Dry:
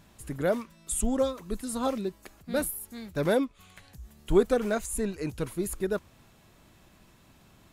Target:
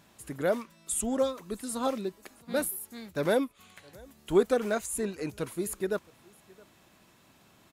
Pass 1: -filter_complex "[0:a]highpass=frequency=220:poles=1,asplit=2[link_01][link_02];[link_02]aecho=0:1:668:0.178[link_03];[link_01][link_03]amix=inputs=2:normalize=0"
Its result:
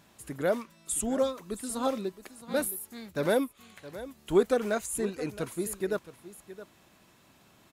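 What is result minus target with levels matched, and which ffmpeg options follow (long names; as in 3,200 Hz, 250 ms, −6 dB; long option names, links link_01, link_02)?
echo-to-direct +10.5 dB
-filter_complex "[0:a]highpass=frequency=220:poles=1,asplit=2[link_01][link_02];[link_02]aecho=0:1:668:0.0531[link_03];[link_01][link_03]amix=inputs=2:normalize=0"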